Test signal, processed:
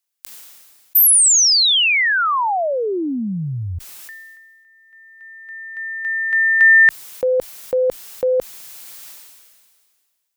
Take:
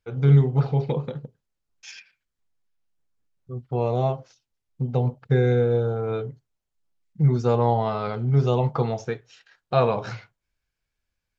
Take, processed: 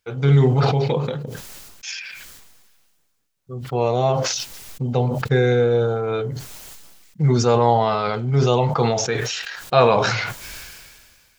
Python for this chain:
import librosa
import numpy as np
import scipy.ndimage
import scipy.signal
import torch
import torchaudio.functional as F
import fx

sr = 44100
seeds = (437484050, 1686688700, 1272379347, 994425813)

y = fx.tilt_eq(x, sr, slope=2.0)
y = fx.sustainer(y, sr, db_per_s=31.0)
y = y * librosa.db_to_amplitude(6.0)